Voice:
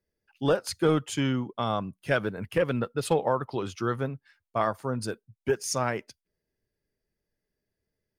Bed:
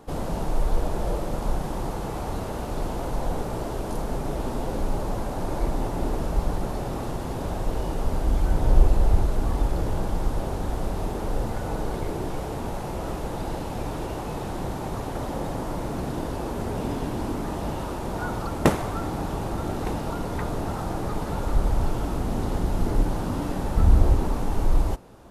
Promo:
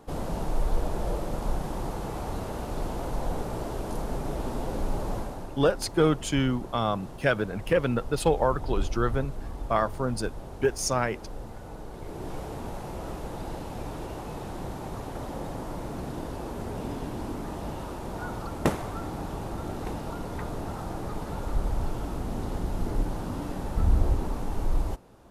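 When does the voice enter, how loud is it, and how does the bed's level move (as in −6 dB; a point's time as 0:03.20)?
5.15 s, +1.5 dB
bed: 0:05.17 −3 dB
0:05.54 −12.5 dB
0:11.92 −12.5 dB
0:12.32 −5.5 dB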